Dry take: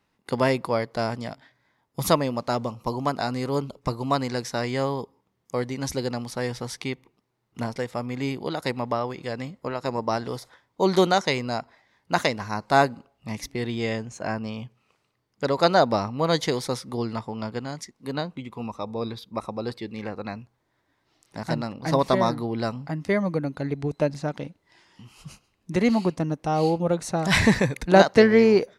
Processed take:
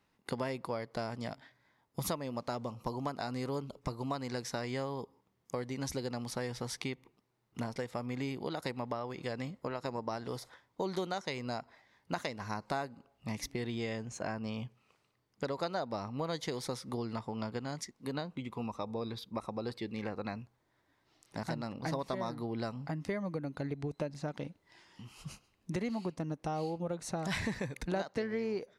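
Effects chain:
downward compressor 5 to 1, threshold −31 dBFS, peak gain reduction 19 dB
level −3 dB

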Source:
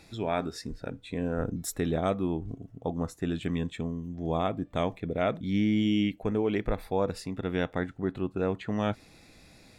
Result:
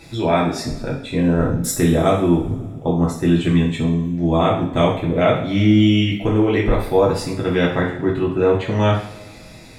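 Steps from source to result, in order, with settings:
coupled-rooms reverb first 0.52 s, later 2 s, from −20 dB, DRR −4.5 dB
level +7 dB

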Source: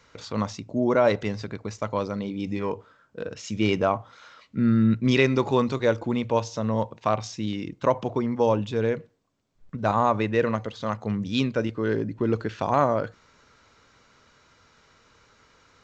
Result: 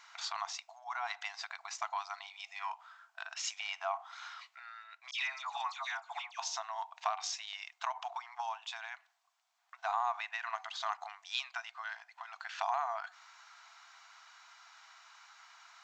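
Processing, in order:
brickwall limiter −13.5 dBFS, peak gain reduction 7 dB
0:05.11–0:06.39: all-pass dispersion lows, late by 102 ms, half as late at 1,800 Hz
downward compressor 5 to 1, threshold −29 dBFS, peak gain reduction 10.5 dB
linear-phase brick-wall high-pass 660 Hz
level +2 dB

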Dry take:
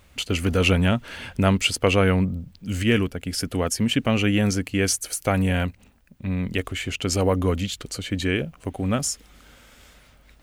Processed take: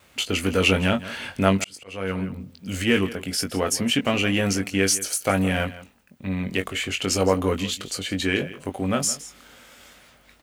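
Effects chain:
in parallel at −9.5 dB: soft clipping −23.5 dBFS, distortion −8 dB
on the sum: noise gate with hold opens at −46 dBFS
high-pass filter 260 Hz 6 dB per octave
double-tracking delay 21 ms −6.5 dB
on a send: single-tap delay 165 ms −16.5 dB
0:01.55–0:02.41: on the sum: volume swells 682 ms

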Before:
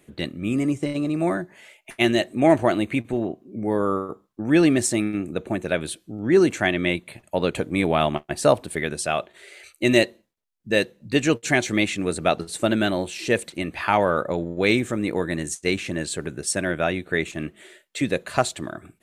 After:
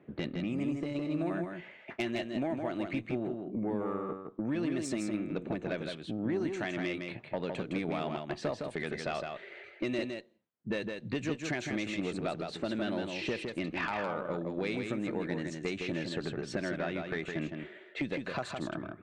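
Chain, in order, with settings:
low-pass filter 5,200 Hz 12 dB per octave
low-pass that shuts in the quiet parts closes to 1,500 Hz, open at −18 dBFS
high-pass filter 130 Hz 12 dB per octave
low-shelf EQ 180 Hz +5 dB
downward compressor 12 to 1, threshold −29 dBFS, peak gain reduction 20 dB
tube saturation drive 24 dB, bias 0.25
on a send: single-tap delay 161 ms −5 dB

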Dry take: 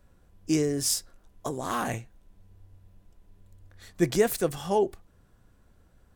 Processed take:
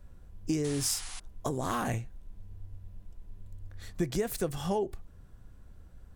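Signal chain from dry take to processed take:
low-shelf EQ 130 Hz +11 dB
downward compressor 6 to 1, threshold −27 dBFS, peak gain reduction 11.5 dB
sound drawn into the spectrogram noise, 0:00.64–0:01.20, 690–11,000 Hz −44 dBFS

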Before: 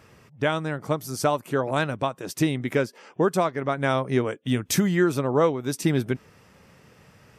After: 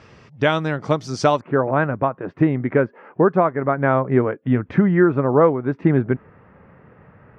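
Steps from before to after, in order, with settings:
low-pass filter 5,700 Hz 24 dB per octave, from 0:01.41 1,800 Hz
level +6 dB

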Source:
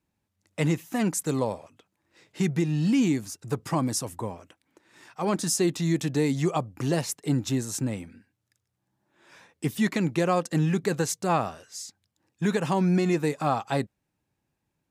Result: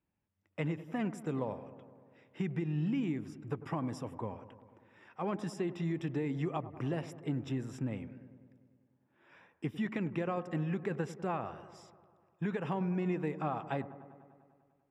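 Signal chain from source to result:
downward compressor, threshold −24 dBFS, peak gain reduction 6.5 dB
Savitzky-Golay smoothing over 25 samples
on a send: delay with a low-pass on its return 99 ms, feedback 71%, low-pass 1,300 Hz, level −14 dB
on the sum: level −6.5 dB

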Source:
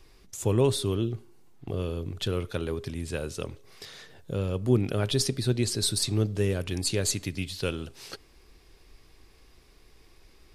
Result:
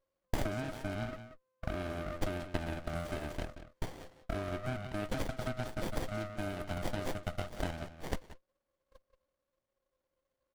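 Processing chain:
neighbouring bands swapped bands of 500 Hz
downward compressor 10 to 1, threshold −40 dBFS, peak gain reduction 23 dB
0:05.49–0:07.52: dynamic equaliser 6,000 Hz, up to −6 dB, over −58 dBFS, Q 1.8
noise gate −45 dBFS, range −37 dB
high-pass filter 250 Hz 12 dB per octave
high-shelf EQ 4,100 Hz +8 dB
far-end echo of a speakerphone 180 ms, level −10 dB
windowed peak hold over 33 samples
level +8 dB

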